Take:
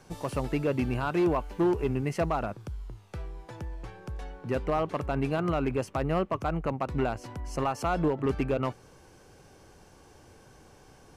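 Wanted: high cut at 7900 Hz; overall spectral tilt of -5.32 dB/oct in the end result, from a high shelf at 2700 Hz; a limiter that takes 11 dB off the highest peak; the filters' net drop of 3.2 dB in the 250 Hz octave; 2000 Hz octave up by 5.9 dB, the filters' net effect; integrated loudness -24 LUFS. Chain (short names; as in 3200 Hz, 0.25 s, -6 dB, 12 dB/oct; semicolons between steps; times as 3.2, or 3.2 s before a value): LPF 7900 Hz; bell 250 Hz -5 dB; bell 2000 Hz +6.5 dB; high shelf 2700 Hz +4.5 dB; gain +12 dB; limiter -13 dBFS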